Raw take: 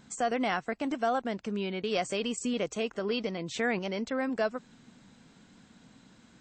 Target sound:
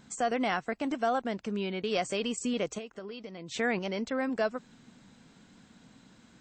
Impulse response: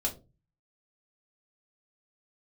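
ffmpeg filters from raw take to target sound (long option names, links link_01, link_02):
-filter_complex "[0:a]asettb=1/sr,asplit=3[link_01][link_02][link_03];[link_01]atrim=end=2.784[link_04];[link_02]atrim=start=2.78:end=3.52,asetpts=PTS-STARTPTS,afade=type=in:duration=0.004:curve=qsin,afade=type=out:start_time=0.736:duration=0.004:curve=qsin,acompressor=threshold=-39dB:ratio=8[link_05];[link_03]atrim=start=3.516[link_06];[link_04][link_05]acrossfade=duration=0.004:curve1=hsin:curve2=qsin[link_07];[link_07][link_06]acrossfade=duration=0.004:curve1=qsin:curve2=hsin"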